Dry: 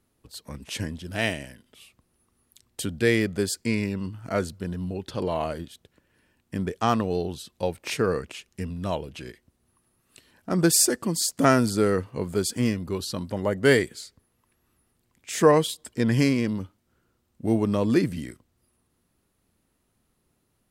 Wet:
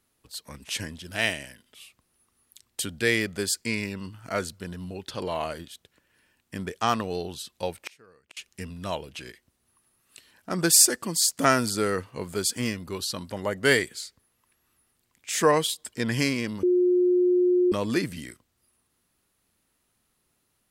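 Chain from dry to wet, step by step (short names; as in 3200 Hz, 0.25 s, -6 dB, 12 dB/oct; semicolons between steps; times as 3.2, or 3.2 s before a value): tilt shelf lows -5 dB, about 800 Hz; 7.74–8.37 flipped gate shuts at -21 dBFS, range -28 dB; 16.63–17.72 bleep 359 Hz -16 dBFS; gain -1.5 dB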